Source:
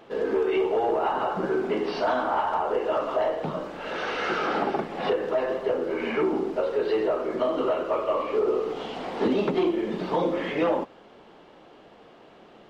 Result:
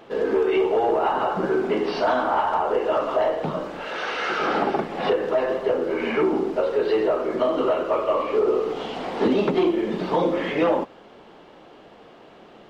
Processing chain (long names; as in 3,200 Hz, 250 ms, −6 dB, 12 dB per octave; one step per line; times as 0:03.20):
0:03.84–0:04.40: low-shelf EQ 440 Hz −8.5 dB
level +3.5 dB